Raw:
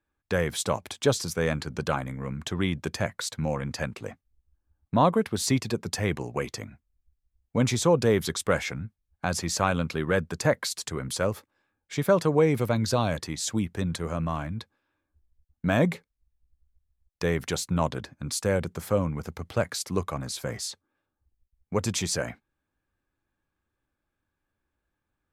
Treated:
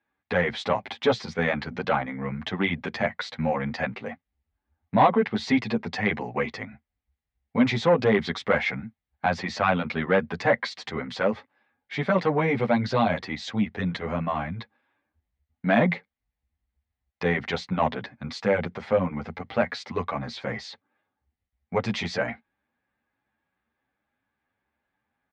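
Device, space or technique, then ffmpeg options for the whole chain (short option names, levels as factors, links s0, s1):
barber-pole flanger into a guitar amplifier: -filter_complex "[0:a]asplit=2[s0][s1];[s1]adelay=9.3,afreqshift=2.9[s2];[s0][s2]amix=inputs=2:normalize=1,asoftclip=type=tanh:threshold=0.15,highpass=100,equalizer=f=100:t=q:w=4:g=-5,equalizer=f=150:t=q:w=4:g=-5,equalizer=f=230:t=q:w=4:g=5,equalizer=f=330:t=q:w=4:g=-6,equalizer=f=780:t=q:w=4:g=7,equalizer=f=2000:t=q:w=4:g=8,lowpass=f=4000:w=0.5412,lowpass=f=4000:w=1.3066,volume=1.88"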